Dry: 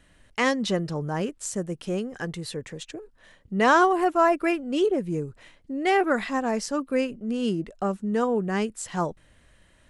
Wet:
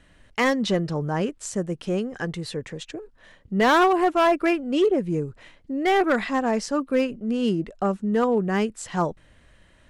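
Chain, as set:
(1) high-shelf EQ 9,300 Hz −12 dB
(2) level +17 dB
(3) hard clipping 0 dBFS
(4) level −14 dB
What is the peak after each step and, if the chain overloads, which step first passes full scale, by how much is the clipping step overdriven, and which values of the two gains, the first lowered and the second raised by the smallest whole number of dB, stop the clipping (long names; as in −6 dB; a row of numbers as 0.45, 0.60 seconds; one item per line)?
−9.5, +7.5, 0.0, −14.0 dBFS
step 2, 7.5 dB
step 2 +9 dB, step 4 −6 dB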